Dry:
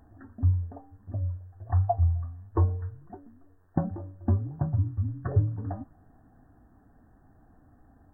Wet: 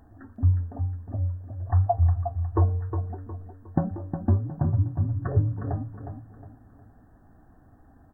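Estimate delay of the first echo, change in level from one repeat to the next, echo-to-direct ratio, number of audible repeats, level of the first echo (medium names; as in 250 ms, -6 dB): 361 ms, -9.0 dB, -7.5 dB, 4, -8.0 dB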